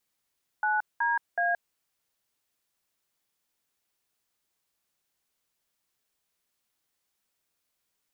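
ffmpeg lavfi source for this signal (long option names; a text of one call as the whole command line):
ffmpeg -f lavfi -i "aevalsrc='0.0501*clip(min(mod(t,0.373),0.174-mod(t,0.373))/0.002,0,1)*(eq(floor(t/0.373),0)*(sin(2*PI*852*mod(t,0.373))+sin(2*PI*1477*mod(t,0.373)))+eq(floor(t/0.373),1)*(sin(2*PI*941*mod(t,0.373))+sin(2*PI*1633*mod(t,0.373)))+eq(floor(t/0.373),2)*(sin(2*PI*697*mod(t,0.373))+sin(2*PI*1633*mod(t,0.373))))':duration=1.119:sample_rate=44100" out.wav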